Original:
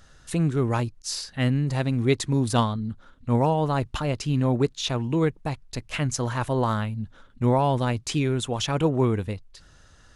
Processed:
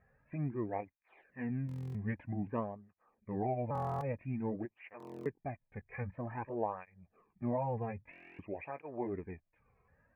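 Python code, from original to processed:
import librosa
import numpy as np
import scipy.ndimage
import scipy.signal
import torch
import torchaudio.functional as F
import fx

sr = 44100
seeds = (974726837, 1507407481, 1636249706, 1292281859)

y = fx.pitch_ramps(x, sr, semitones=-4.5, every_ms=1235)
y = scipy.signal.sosfilt(scipy.signal.cheby1(6, 6, 2500.0, 'lowpass', fs=sr, output='sos'), y)
y = fx.notch(y, sr, hz=1400.0, q=5.4)
y = fx.buffer_glitch(y, sr, at_s=(1.67, 3.73, 4.98, 8.11), block=1024, repeats=11)
y = fx.flanger_cancel(y, sr, hz=0.51, depth_ms=3.5)
y = y * librosa.db_to_amplitude(-6.0)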